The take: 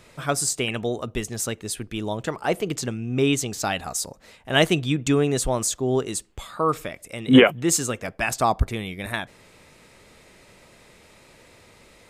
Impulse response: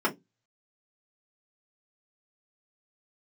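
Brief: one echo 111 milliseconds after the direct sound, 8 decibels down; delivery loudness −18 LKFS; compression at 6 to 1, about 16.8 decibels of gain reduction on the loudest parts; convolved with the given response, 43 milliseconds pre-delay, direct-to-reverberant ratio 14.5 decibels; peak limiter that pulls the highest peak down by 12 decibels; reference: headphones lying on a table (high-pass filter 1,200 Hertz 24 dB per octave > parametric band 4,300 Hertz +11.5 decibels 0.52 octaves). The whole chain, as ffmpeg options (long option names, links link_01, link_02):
-filter_complex "[0:a]acompressor=threshold=-27dB:ratio=6,alimiter=level_in=1dB:limit=-24dB:level=0:latency=1,volume=-1dB,aecho=1:1:111:0.398,asplit=2[link_01][link_02];[1:a]atrim=start_sample=2205,adelay=43[link_03];[link_02][link_03]afir=irnorm=-1:irlink=0,volume=-26.5dB[link_04];[link_01][link_04]amix=inputs=2:normalize=0,highpass=frequency=1200:width=0.5412,highpass=frequency=1200:width=1.3066,equalizer=frequency=4300:width_type=o:width=0.52:gain=11.5,volume=18dB"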